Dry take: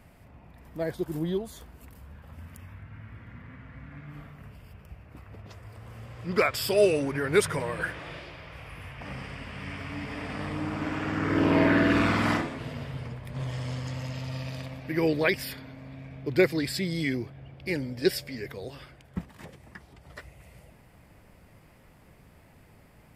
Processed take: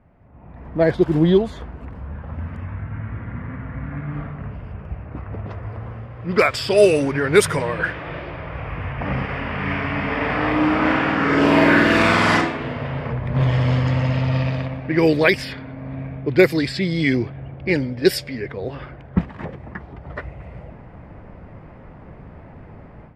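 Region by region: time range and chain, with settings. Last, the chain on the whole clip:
9.25–13.13 s: bass shelf 270 Hz -8 dB + doubling 36 ms -2 dB
whole clip: level-controlled noise filter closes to 1.3 kHz, open at -19.5 dBFS; level rider gain up to 16.5 dB; trim -1 dB

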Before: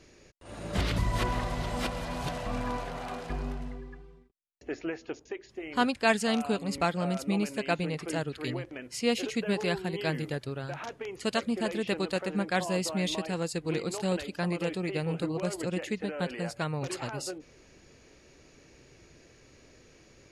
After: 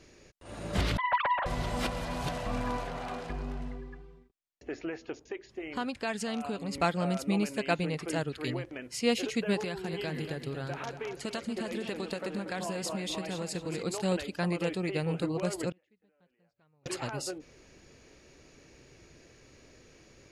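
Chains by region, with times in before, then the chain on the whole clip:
0.97–1.46 s: formants replaced by sine waves + Chebyshev high-pass 310 Hz, order 8 + loudspeaker Doppler distortion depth 0.32 ms
2.87–6.75 s: treble shelf 9.8 kHz -7.5 dB + compression 3:1, threshold -31 dBFS
9.60–13.83 s: compression 10:1, threshold -30 dBFS + feedback delay 236 ms, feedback 38%, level -9 dB
15.70–16.86 s: inverted gate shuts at -33 dBFS, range -36 dB + distance through air 150 m
whole clip: none

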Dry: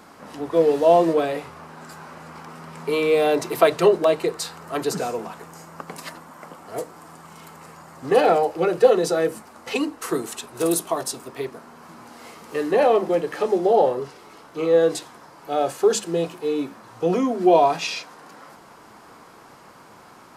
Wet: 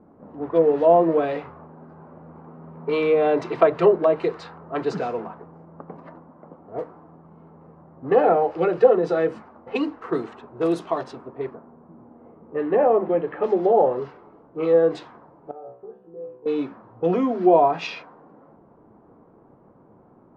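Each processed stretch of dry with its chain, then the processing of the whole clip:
11.55–13.44 s: low-pass 3.4 kHz 24 dB/octave + treble shelf 2.5 kHz -9 dB
15.51–16.46 s: compression 2:1, threshold -28 dBFS + low-pass 1.8 kHz + feedback comb 63 Hz, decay 0.5 s, mix 100%
whole clip: level-controlled noise filter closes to 430 Hz, open at -17 dBFS; treble shelf 5.3 kHz -11.5 dB; low-pass that closes with the level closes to 1.5 kHz, closed at -13.5 dBFS

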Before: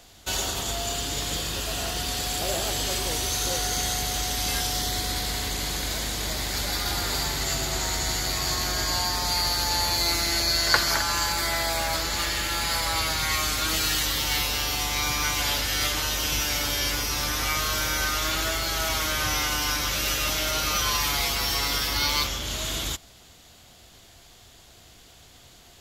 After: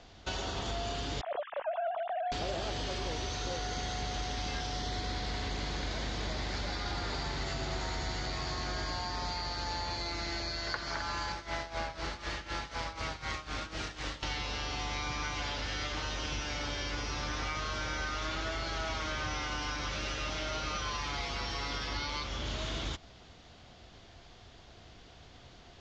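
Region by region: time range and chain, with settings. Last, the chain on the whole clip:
1.21–2.32 s: formants replaced by sine waves + low-pass 1 kHz + loudspeaker Doppler distortion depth 0.19 ms
11.32–14.23 s: self-modulated delay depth 0.17 ms + tremolo 4 Hz, depth 85%
whole clip: steep low-pass 6.2 kHz 36 dB/octave; compression, threshold -30 dBFS; treble shelf 3 kHz -9.5 dB

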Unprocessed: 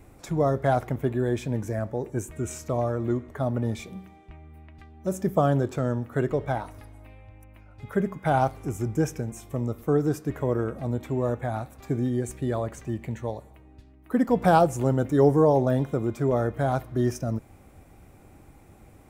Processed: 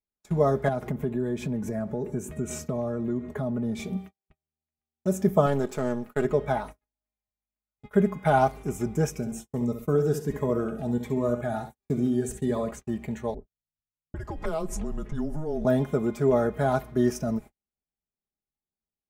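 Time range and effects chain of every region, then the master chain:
0.68–3.97 s: high-pass 98 Hz + bass shelf 370 Hz +10.5 dB + compression 3:1, threshold -28 dBFS
5.46–6.25 s: partial rectifier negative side -7 dB + tone controls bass -4 dB, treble +4 dB
9.10–12.71 s: flutter echo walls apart 11.4 m, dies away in 0.4 s + Shepard-style phaser rising 1.4 Hz
13.34–15.65 s: level-controlled noise filter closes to 330 Hz, open at -18 dBFS + compression 5:1, threshold -28 dBFS + frequency shift -160 Hz
whole clip: comb 4.8 ms, depth 64%; gate -38 dBFS, range -48 dB

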